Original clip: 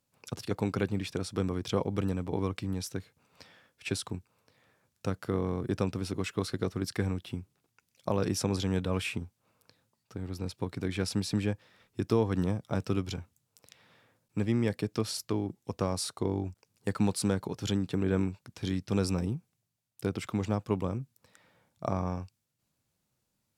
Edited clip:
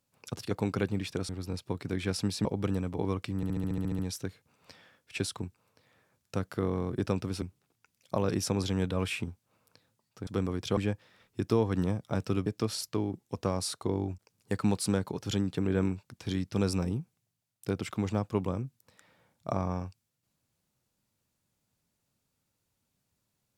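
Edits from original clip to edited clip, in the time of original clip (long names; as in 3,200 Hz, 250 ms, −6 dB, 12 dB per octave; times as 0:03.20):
0:01.29–0:01.79: swap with 0:10.21–0:11.37
0:02.70: stutter 0.07 s, 10 plays
0:06.13–0:07.36: remove
0:13.06–0:14.82: remove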